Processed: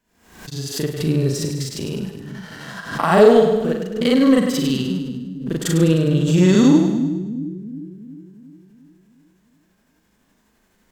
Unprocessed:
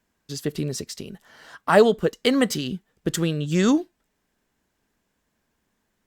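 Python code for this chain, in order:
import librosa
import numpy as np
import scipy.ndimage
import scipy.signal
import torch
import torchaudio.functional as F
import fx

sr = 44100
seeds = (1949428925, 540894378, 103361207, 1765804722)

p1 = fx.recorder_agc(x, sr, target_db=-10.5, rise_db_per_s=6.0, max_gain_db=30)
p2 = fx.hpss(p1, sr, part='harmonic', gain_db=9)
p3 = fx.stretch_grains(p2, sr, factor=1.8, grain_ms=169.0)
p4 = fx.leveller(p3, sr, passes=1)
p5 = p4 + fx.echo_split(p4, sr, split_hz=300.0, low_ms=358, high_ms=102, feedback_pct=52, wet_db=-7, dry=0)
p6 = fx.pre_swell(p5, sr, db_per_s=86.0)
y = p6 * librosa.db_to_amplitude(-5.5)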